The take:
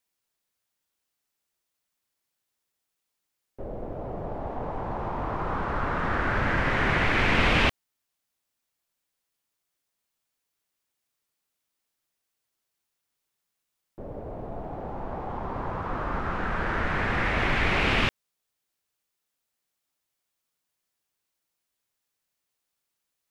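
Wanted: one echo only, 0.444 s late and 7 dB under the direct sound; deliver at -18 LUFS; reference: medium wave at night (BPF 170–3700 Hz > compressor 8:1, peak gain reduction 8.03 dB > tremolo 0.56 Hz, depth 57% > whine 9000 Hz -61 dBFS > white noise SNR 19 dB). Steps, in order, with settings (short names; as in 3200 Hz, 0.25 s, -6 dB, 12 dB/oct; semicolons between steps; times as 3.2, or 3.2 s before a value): BPF 170–3700 Hz; echo 0.444 s -7 dB; compressor 8:1, threshold -27 dBFS; tremolo 0.56 Hz, depth 57%; whine 9000 Hz -61 dBFS; white noise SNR 19 dB; gain +16.5 dB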